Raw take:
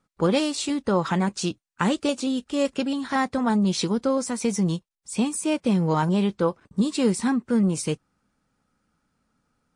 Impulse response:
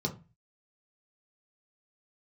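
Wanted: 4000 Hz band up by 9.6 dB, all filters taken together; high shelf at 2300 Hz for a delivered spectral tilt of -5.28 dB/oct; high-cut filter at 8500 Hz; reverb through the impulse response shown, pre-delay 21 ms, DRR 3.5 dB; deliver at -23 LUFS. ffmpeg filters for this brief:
-filter_complex "[0:a]lowpass=8.5k,highshelf=f=2.3k:g=5,equalizer=f=4k:t=o:g=7.5,asplit=2[a][b];[1:a]atrim=start_sample=2205,adelay=21[c];[b][c]afir=irnorm=-1:irlink=0,volume=-8dB[d];[a][d]amix=inputs=2:normalize=0,volume=-5dB"

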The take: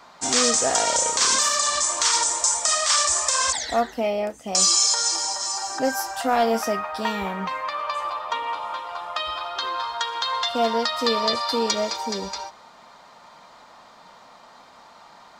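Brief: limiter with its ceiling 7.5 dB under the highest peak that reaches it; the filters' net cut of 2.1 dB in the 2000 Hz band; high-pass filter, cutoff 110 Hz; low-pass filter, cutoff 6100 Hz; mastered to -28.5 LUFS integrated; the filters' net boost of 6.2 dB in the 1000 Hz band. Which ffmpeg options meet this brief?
-af "highpass=110,lowpass=6.1k,equalizer=f=1k:t=o:g=9,equalizer=f=2k:t=o:g=-6,volume=-6dB,alimiter=limit=-18.5dB:level=0:latency=1"

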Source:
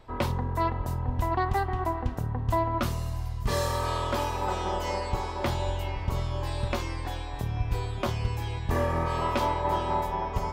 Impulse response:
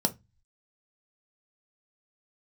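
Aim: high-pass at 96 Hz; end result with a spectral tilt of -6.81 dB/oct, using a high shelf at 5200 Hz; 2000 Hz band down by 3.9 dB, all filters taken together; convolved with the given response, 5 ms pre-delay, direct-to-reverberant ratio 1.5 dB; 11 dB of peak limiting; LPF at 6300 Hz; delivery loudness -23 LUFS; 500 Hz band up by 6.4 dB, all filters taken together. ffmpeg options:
-filter_complex "[0:a]highpass=96,lowpass=6.3k,equalizer=f=500:t=o:g=8.5,equalizer=f=2k:t=o:g=-6,highshelf=f=5.2k:g=4,alimiter=limit=-21.5dB:level=0:latency=1,asplit=2[a][b];[1:a]atrim=start_sample=2205,adelay=5[c];[b][c]afir=irnorm=-1:irlink=0,volume=-9.5dB[d];[a][d]amix=inputs=2:normalize=0,volume=3.5dB"

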